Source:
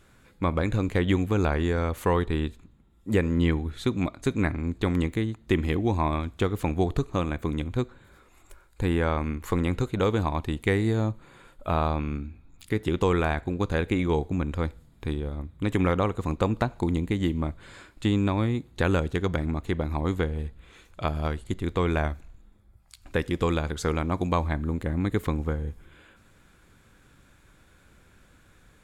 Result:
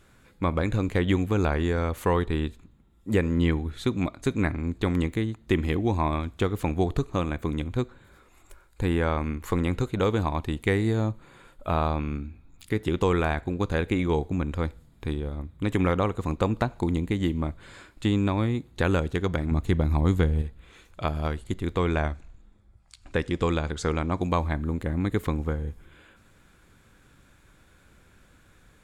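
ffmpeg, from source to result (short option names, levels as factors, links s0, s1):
-filter_complex "[0:a]asettb=1/sr,asplit=3[s0][s1][s2];[s0]atrim=end=19.514[s3];[s1]atrim=start=19.51:end=20.42,asetpts=PTS-STARTPTS,afade=t=in:d=0.004:c=qsin,afade=t=out:st=0.906:d=0.004:c=qsin,bass=f=250:g=7,treble=f=4000:g=4[s4];[s2]atrim=start=20.416[s5];[s3][s4]acrossfade=d=0.004:c1=hsin:c2=qsin[s6];[s6][s5]acrossfade=d=0.004:c1=qsin:c2=hsin,asettb=1/sr,asplit=3[s7][s8][s9];[s7]atrim=end=21.884[s10];[s8]atrim=start=21.88:end=24.22,asetpts=PTS-STARTPTS,afade=t=in:d=0.004:c=qsin,afade=t=out:st=2.336:d=0.004:c=qsin,lowpass=f=9200:w=0.5412,lowpass=f=9200:w=1.3066[s11];[s9]atrim=start=24.216[s12];[s10][s11]acrossfade=d=0.004:c1=hsin:c2=qsin[s13];[s13][s12]acrossfade=d=0.004:c1=qsin:c2=hsin"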